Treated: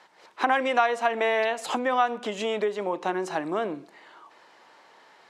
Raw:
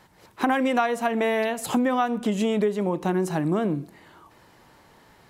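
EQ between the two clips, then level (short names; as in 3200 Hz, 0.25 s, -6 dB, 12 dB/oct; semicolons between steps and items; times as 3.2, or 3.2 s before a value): BPF 500–5800 Hz; +2.0 dB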